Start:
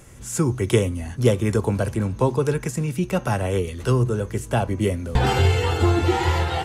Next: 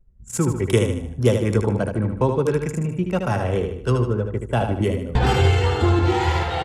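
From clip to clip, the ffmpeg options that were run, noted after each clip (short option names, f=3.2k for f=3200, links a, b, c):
-af "anlmdn=63.1,aecho=1:1:76|152|228|304|380:0.501|0.221|0.097|0.0427|0.0188"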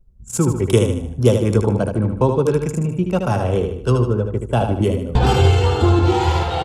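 -af "equalizer=f=1.9k:t=o:w=0.53:g=-9.5,volume=3.5dB"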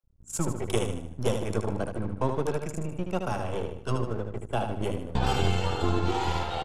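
-filter_complex "[0:a]bandreject=f=50:t=h:w=6,bandreject=f=100:t=h:w=6,acrossover=split=660|2800[a][b][c];[a]aeval=exprs='max(val(0),0)':c=same[d];[d][b][c]amix=inputs=3:normalize=0,volume=-8dB"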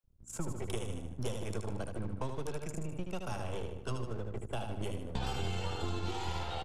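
-filter_complex "[0:a]acrossover=split=110|2500[a][b][c];[a]acompressor=threshold=-32dB:ratio=4[d];[b]acompressor=threshold=-36dB:ratio=4[e];[c]acompressor=threshold=-43dB:ratio=4[f];[d][e][f]amix=inputs=3:normalize=0,volume=-2.5dB"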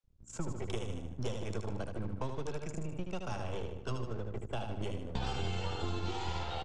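-af "lowpass=f=7.3k:w=0.5412,lowpass=f=7.3k:w=1.3066"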